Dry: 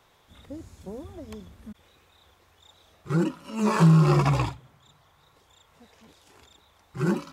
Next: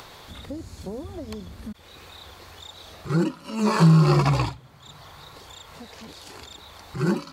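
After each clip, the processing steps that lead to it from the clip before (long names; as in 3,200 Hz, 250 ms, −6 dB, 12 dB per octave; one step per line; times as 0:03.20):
parametric band 4,400 Hz +9 dB 0.23 octaves
in parallel at +3 dB: upward compression, threshold −27 dBFS
on the sum: level −6 dB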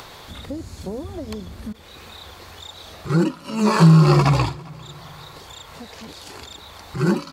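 repeating echo 398 ms, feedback 44%, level −24 dB
level +4 dB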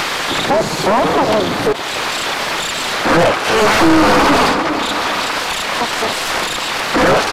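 full-wave rectification
mid-hump overdrive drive 42 dB, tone 2,000 Hz, clips at −1.5 dBFS
downsampling to 32,000 Hz
level −1.5 dB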